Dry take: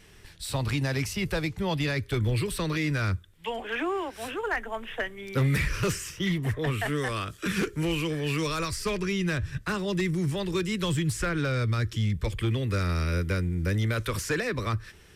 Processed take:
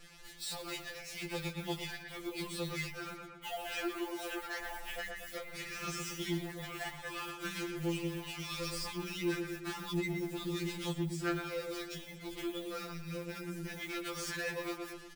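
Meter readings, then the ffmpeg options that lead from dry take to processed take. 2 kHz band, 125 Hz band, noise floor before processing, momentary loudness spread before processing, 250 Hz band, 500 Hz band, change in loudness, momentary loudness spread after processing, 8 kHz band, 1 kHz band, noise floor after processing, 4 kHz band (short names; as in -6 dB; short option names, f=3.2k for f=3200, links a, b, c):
-9.0 dB, -17.0 dB, -53 dBFS, 5 LU, -9.5 dB, -9.5 dB, -10.5 dB, 6 LU, -7.0 dB, -9.5 dB, -50 dBFS, -6.5 dB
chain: -filter_complex "[0:a]highshelf=f=7k:g=-4,asplit=2[a][b];[b]adelay=14,volume=-2dB[c];[a][c]amix=inputs=2:normalize=0,aphaser=in_gain=1:out_gain=1:delay=4.8:decay=0.45:speed=1:type=triangular,equalizer=f=290:w=0.48:g=3.5,acrossover=split=150[d][e];[e]adynamicsmooth=sensitivity=3:basefreq=4.4k[f];[d][f]amix=inputs=2:normalize=0,acrusher=bits=7:mix=0:aa=0.5,asplit=2[g][h];[h]adelay=118,lowpass=f=3.3k:p=1,volume=-7.5dB,asplit=2[i][j];[j]adelay=118,lowpass=f=3.3k:p=1,volume=0.45,asplit=2[k][l];[l]adelay=118,lowpass=f=3.3k:p=1,volume=0.45,asplit=2[m][n];[n]adelay=118,lowpass=f=3.3k:p=1,volume=0.45,asplit=2[o][p];[p]adelay=118,lowpass=f=3.3k:p=1,volume=0.45[q];[g][i][k][m][o][q]amix=inputs=6:normalize=0,acompressor=threshold=-23dB:ratio=6,asoftclip=type=tanh:threshold=-25dB,crystalizer=i=4:c=0,afftfilt=real='re*2.83*eq(mod(b,8),0)':imag='im*2.83*eq(mod(b,8),0)':win_size=2048:overlap=0.75,volume=-7.5dB"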